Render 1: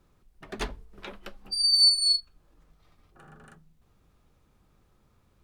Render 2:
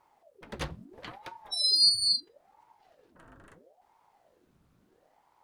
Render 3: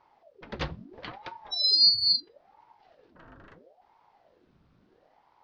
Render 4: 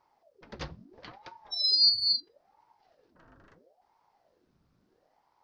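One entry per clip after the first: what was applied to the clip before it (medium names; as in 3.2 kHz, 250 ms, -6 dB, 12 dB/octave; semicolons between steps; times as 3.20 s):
ring modulator with a swept carrier 510 Hz, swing 80%, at 0.75 Hz
steep low-pass 5.3 kHz 36 dB/octave; trim +3 dB
resonant high shelf 4.3 kHz +6 dB, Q 1.5; trim -6.5 dB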